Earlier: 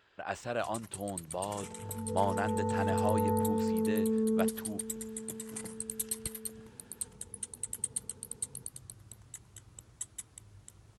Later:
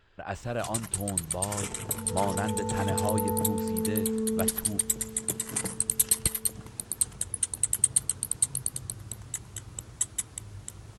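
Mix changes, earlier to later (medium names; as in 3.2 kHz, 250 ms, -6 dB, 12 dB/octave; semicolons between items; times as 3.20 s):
speech: remove high-pass 360 Hz 6 dB/octave; first sound +12.0 dB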